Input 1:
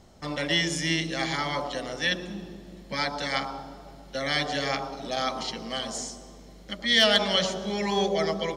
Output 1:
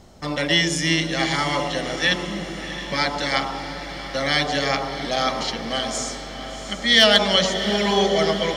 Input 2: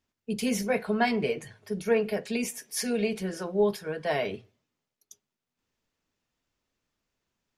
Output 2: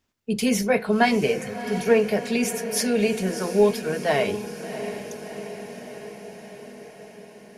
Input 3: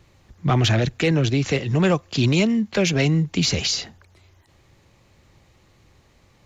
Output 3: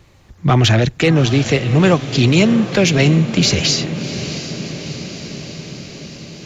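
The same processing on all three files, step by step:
feedback delay with all-pass diffusion 697 ms, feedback 67%, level −11.5 dB
level +6 dB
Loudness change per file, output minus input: +6.0, +6.0, +5.5 LU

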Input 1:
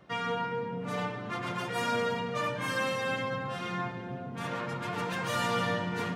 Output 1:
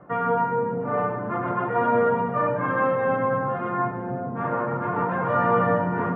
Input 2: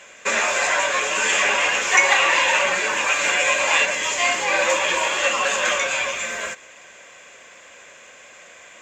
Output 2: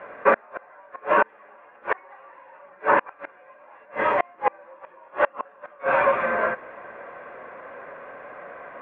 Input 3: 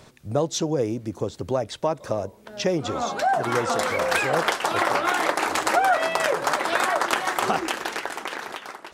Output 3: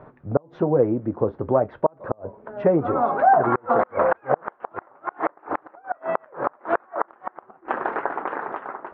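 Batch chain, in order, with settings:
flanger 0.36 Hz, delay 6.7 ms, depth 2.3 ms, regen −63%
gate with flip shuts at −15 dBFS, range −35 dB
low-pass filter 1,400 Hz 24 dB per octave
low-shelf EQ 170 Hz −7.5 dB
loudness normalisation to −24 LKFS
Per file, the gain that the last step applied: +15.5, +14.5, +11.0 decibels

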